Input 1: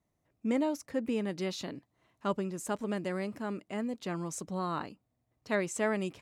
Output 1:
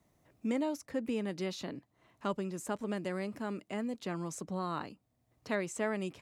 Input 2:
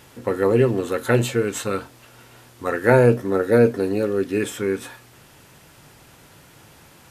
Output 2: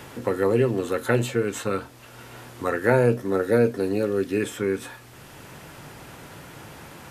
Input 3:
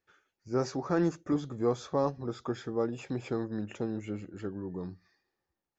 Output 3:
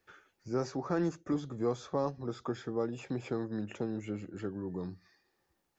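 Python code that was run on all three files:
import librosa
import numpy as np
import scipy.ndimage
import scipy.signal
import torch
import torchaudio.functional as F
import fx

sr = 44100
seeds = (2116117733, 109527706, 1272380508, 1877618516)

y = fx.band_squash(x, sr, depth_pct=40)
y = F.gain(torch.from_numpy(y), -2.5).numpy()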